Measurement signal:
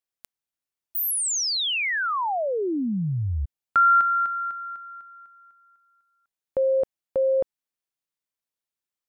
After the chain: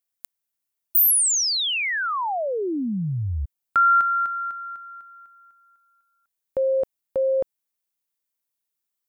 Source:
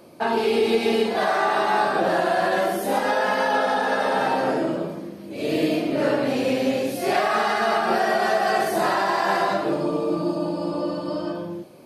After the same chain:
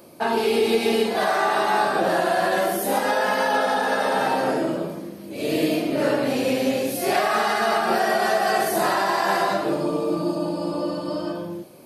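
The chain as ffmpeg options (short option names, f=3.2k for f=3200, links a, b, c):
-af "highshelf=f=8.6k:g=11.5"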